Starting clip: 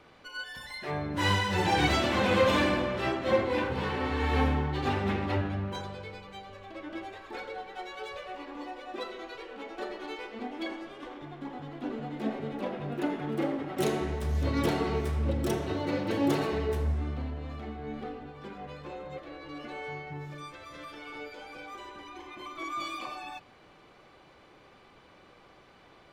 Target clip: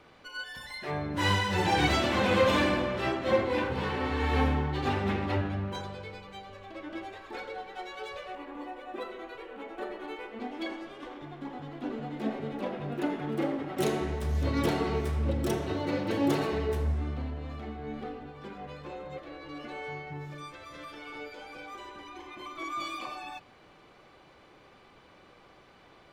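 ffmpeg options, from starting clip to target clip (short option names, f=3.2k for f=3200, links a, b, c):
-filter_complex "[0:a]asettb=1/sr,asplit=3[a][b][c];[a]atrim=end=8.354[d];[b]atrim=start=8.35:end=10.4,asetpts=PTS-STARTPTS,afade=t=in:d=0.004:c=qsin,afade=t=out:st=2.046:d=0.004:c=qsin,equalizer=f=5.2k:t=o:w=1.1:g=-11[e];[c]atrim=start=10.396[f];[d][e]acrossfade=d=0.004:c1=hsin:c2=qsin[g];[g][f]acrossfade=d=0.004:c1=qsin:c2=hsin"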